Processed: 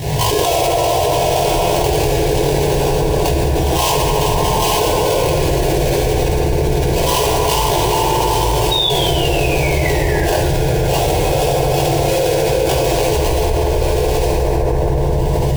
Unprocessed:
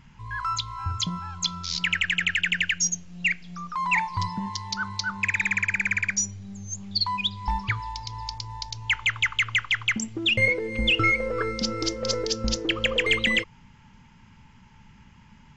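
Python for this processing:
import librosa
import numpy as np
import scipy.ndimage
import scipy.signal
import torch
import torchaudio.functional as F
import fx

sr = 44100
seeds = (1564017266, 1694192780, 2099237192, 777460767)

p1 = fx.chorus_voices(x, sr, voices=2, hz=0.66, base_ms=18, depth_ms=4.6, mix_pct=55)
p2 = p1 + fx.echo_single(p1, sr, ms=842, db=-8.5, dry=0)
p3 = fx.dynamic_eq(p2, sr, hz=1300.0, q=0.95, threshold_db=-42.0, ratio=4.0, max_db=8)
p4 = scipy.signal.sosfilt(scipy.signal.butter(2, 120.0, 'highpass', fs=sr, output='sos'), p3)
p5 = fx.high_shelf(p4, sr, hz=5400.0, db=-10.5)
p6 = fx.notch(p5, sr, hz=910.0, q=18.0)
p7 = fx.sample_hold(p6, sr, seeds[0], rate_hz=2000.0, jitter_pct=20)
p8 = fx.spec_paint(p7, sr, seeds[1], shape='fall', start_s=8.71, length_s=1.77, low_hz=1400.0, high_hz=3800.0, level_db=-34.0)
p9 = fx.fixed_phaser(p8, sr, hz=530.0, stages=4)
p10 = fx.rev_fdn(p9, sr, rt60_s=2.8, lf_ratio=1.3, hf_ratio=0.45, size_ms=42.0, drr_db=-7.5)
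y = fx.env_flatten(p10, sr, amount_pct=100)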